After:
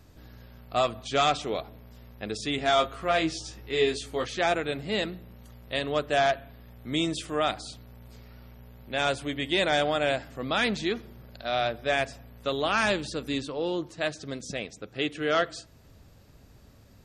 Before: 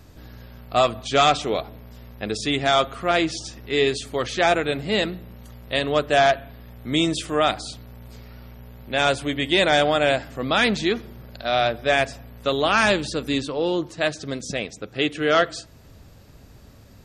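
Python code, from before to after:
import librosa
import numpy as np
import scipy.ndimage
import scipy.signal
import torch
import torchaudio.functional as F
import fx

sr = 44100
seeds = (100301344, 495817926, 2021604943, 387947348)

y = fx.doubler(x, sr, ms=19.0, db=-4, at=(2.56, 4.25))
y = y * librosa.db_to_amplitude(-6.5)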